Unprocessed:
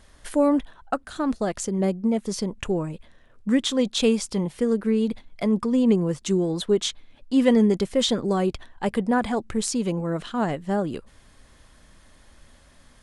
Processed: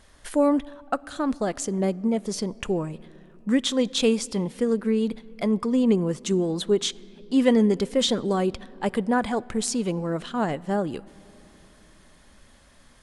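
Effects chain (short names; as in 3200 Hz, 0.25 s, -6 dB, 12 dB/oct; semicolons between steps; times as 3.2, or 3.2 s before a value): low shelf 160 Hz -3.5 dB; on a send: reverb RT60 3.4 s, pre-delay 3 ms, DRR 22 dB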